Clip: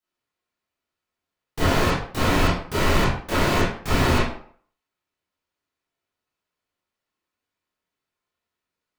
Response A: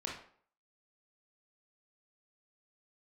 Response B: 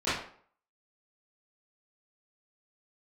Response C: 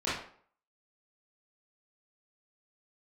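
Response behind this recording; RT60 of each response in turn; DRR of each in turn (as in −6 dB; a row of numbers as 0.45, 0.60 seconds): C; 0.55, 0.55, 0.55 seconds; −2.5, −16.5, −11.5 decibels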